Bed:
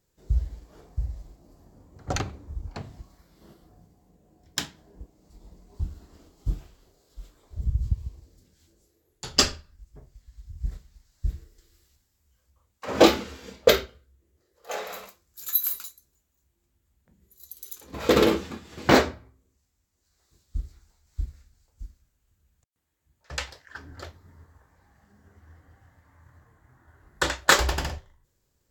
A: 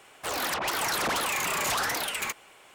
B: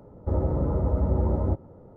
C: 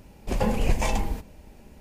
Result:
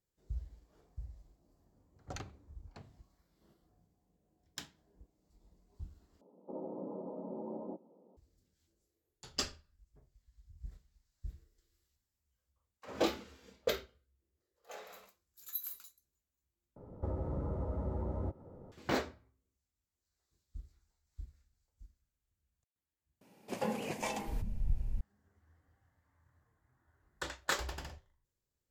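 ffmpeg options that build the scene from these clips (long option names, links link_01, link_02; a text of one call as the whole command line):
ffmpeg -i bed.wav -i cue0.wav -i cue1.wav -i cue2.wav -filter_complex "[2:a]asplit=2[link_01][link_02];[0:a]volume=-16dB[link_03];[link_01]asuperpass=centerf=450:order=12:qfactor=0.51[link_04];[link_02]acrossover=split=240|1200[link_05][link_06][link_07];[link_05]acompressor=threshold=-33dB:ratio=4[link_08];[link_06]acompressor=threshold=-39dB:ratio=4[link_09];[link_07]acompressor=threshold=-53dB:ratio=4[link_10];[link_08][link_09][link_10]amix=inputs=3:normalize=0[link_11];[3:a]acrossover=split=150[link_12][link_13];[link_12]adelay=790[link_14];[link_14][link_13]amix=inputs=2:normalize=0[link_15];[link_03]asplit=4[link_16][link_17][link_18][link_19];[link_16]atrim=end=6.214[link_20];[link_04]atrim=end=1.96,asetpts=PTS-STARTPTS,volume=-12.5dB[link_21];[link_17]atrim=start=8.166:end=16.764[link_22];[link_11]atrim=end=1.96,asetpts=PTS-STARTPTS,volume=-4dB[link_23];[link_18]atrim=start=18.716:end=23.214[link_24];[link_15]atrim=end=1.8,asetpts=PTS-STARTPTS,volume=-9dB[link_25];[link_19]atrim=start=25.006[link_26];[link_20][link_21]acrossfade=duration=0.004:curve1=hsin:curve2=hsin[link_27];[link_27][link_22]acrossfade=duration=0.004:curve1=hsin:curve2=hsin[link_28];[link_28][link_23]acrossfade=duration=0.004:curve1=hsin:curve2=hsin[link_29];[link_29][link_24]acrossfade=duration=0.004:curve1=hsin:curve2=hsin[link_30];[link_30][link_25]acrossfade=duration=0.004:curve1=hsin:curve2=hsin[link_31];[link_31][link_26]acrossfade=duration=0.004:curve1=hsin:curve2=hsin" out.wav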